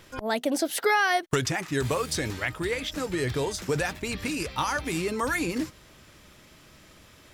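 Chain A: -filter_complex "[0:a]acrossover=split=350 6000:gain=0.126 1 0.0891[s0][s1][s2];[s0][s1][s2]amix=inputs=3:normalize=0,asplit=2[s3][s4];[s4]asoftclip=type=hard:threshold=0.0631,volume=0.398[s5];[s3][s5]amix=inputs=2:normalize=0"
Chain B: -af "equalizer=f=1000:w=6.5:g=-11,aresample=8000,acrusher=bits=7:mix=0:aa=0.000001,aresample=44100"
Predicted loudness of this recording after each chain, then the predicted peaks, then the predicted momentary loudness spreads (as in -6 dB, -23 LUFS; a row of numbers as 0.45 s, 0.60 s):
-27.0 LUFS, -28.5 LUFS; -12.0 dBFS, -12.5 dBFS; 8 LU, 7 LU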